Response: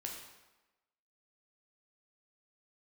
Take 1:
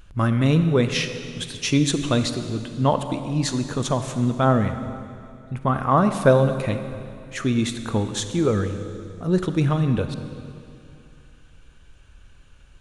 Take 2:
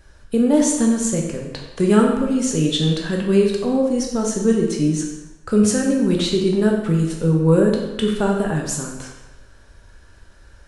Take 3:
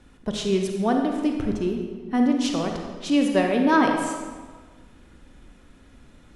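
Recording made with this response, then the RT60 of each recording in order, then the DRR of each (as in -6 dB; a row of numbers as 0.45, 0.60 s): 2; 2.6, 1.1, 1.5 s; 8.5, -0.5, 2.5 dB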